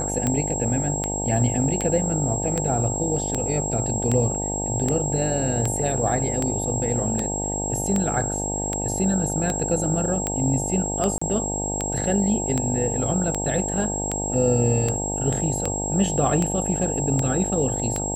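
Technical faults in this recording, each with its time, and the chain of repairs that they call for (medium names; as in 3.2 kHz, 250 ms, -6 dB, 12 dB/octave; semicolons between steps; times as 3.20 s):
buzz 50 Hz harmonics 18 -29 dBFS
tick 78 rpm -10 dBFS
whine 7.6 kHz -27 dBFS
11.18–11.21 s: dropout 35 ms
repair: de-click; de-hum 50 Hz, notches 18; band-stop 7.6 kHz, Q 30; interpolate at 11.18 s, 35 ms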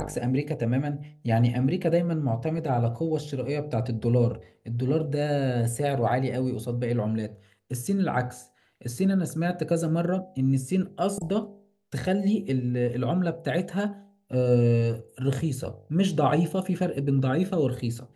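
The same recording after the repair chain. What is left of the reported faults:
nothing left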